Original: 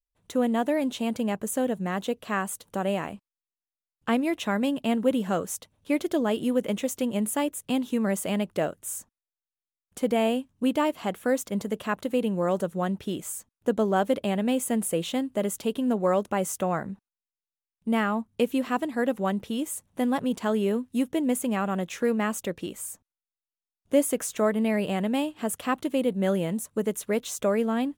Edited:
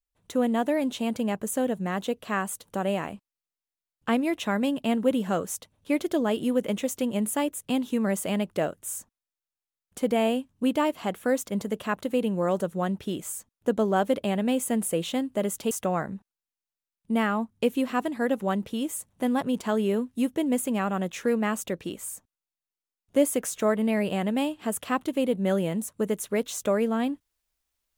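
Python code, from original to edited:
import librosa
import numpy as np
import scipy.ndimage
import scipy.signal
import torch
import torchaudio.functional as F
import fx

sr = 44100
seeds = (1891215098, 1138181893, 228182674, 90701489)

y = fx.edit(x, sr, fx.cut(start_s=15.71, length_s=0.77), tone=tone)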